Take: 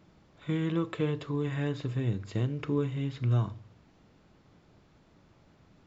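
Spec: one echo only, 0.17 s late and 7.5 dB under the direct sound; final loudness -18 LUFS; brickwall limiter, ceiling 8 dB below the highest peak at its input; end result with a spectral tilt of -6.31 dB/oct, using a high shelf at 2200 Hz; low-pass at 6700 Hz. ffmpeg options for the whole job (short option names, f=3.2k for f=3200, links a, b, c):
-af "lowpass=6.7k,highshelf=f=2.2k:g=8.5,alimiter=level_in=1.5dB:limit=-24dB:level=0:latency=1,volume=-1.5dB,aecho=1:1:170:0.422,volume=16.5dB"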